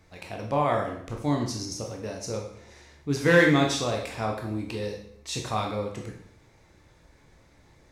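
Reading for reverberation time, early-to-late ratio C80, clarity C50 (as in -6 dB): 0.65 s, 9.0 dB, 5.5 dB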